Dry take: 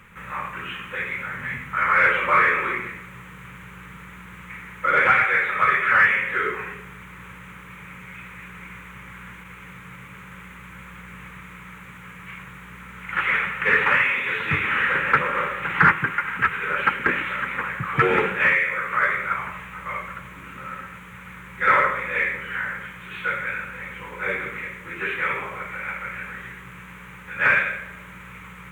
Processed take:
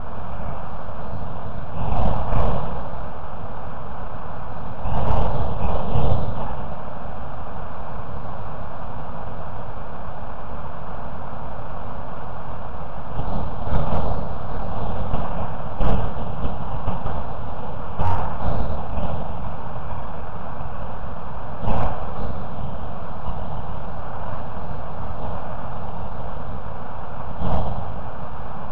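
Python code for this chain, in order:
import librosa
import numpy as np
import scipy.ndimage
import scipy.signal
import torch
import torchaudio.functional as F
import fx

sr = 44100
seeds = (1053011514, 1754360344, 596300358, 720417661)

p1 = fx.delta_mod(x, sr, bps=64000, step_db=-19.0)
p2 = scipy.signal.sosfilt(scipy.signal.butter(2, 240.0, 'highpass', fs=sr, output='sos'), p1)
p3 = p2 + fx.echo_single(p2, sr, ms=174, db=-13.0, dry=0)
p4 = fx.room_shoebox(p3, sr, seeds[0], volume_m3=300.0, walls='mixed', distance_m=1.4)
p5 = np.abs(p4)
p6 = scipy.signal.sosfilt(scipy.signal.butter(4, 1900.0, 'lowpass', fs=sr, output='sos'), p5)
p7 = fx.low_shelf(p6, sr, hz=470.0, db=9.5)
p8 = fx.fixed_phaser(p7, sr, hz=810.0, stages=4)
p9 = fx.slew_limit(p8, sr, full_power_hz=120.0)
y = p9 * librosa.db_to_amplitude(-3.5)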